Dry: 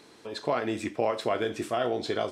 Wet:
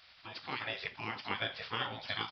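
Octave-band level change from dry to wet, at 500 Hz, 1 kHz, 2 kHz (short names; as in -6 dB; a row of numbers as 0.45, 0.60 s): -18.5, -8.5, 0.0 dB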